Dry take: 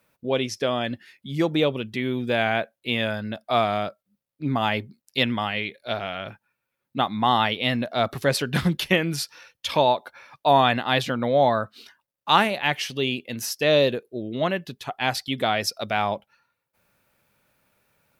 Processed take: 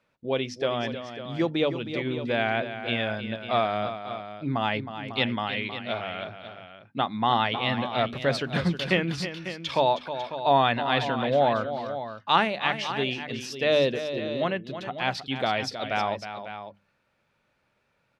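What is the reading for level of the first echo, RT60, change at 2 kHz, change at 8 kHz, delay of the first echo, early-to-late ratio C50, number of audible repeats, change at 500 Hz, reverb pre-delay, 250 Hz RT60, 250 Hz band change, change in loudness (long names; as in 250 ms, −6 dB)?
−10.5 dB, no reverb audible, −2.5 dB, −10.0 dB, 316 ms, no reverb audible, 2, −2.5 dB, no reverb audible, no reverb audible, −3.0 dB, −3.0 dB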